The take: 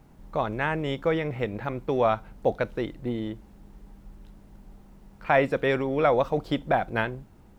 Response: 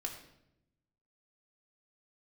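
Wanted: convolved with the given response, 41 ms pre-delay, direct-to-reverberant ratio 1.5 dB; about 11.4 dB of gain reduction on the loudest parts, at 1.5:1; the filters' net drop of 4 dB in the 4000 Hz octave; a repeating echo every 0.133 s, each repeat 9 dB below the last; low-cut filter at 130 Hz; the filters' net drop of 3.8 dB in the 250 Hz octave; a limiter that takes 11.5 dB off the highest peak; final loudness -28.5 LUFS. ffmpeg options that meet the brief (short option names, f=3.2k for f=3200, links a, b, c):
-filter_complex "[0:a]highpass=130,equalizer=f=250:t=o:g=-4.5,equalizer=f=4k:t=o:g=-5.5,acompressor=threshold=-50dB:ratio=1.5,alimiter=level_in=5.5dB:limit=-24dB:level=0:latency=1,volume=-5.5dB,aecho=1:1:133|266|399|532:0.355|0.124|0.0435|0.0152,asplit=2[a][b];[1:a]atrim=start_sample=2205,adelay=41[c];[b][c]afir=irnorm=-1:irlink=0,volume=-1.5dB[d];[a][d]amix=inputs=2:normalize=0,volume=10.5dB"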